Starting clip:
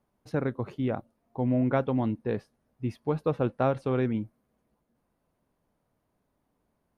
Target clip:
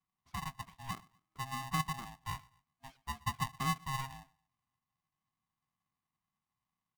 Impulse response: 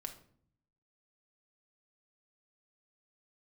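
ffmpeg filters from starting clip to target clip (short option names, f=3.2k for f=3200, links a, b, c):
-filter_complex "[0:a]asplit=3[a][b][c];[a]bandpass=f=530:t=q:w=8,volume=0dB[d];[b]bandpass=f=1.84k:t=q:w=8,volume=-6dB[e];[c]bandpass=f=2.48k:t=q:w=8,volume=-9dB[f];[d][e][f]amix=inputs=3:normalize=0,bass=f=250:g=5,treble=f=4k:g=13,afreqshift=92,asplit=2[g][h];[h]aecho=0:1:122|244:0.0631|0.0233[i];[g][i]amix=inputs=2:normalize=0,aeval=exprs='val(0)*sgn(sin(2*PI*470*n/s))':c=same,volume=-3dB"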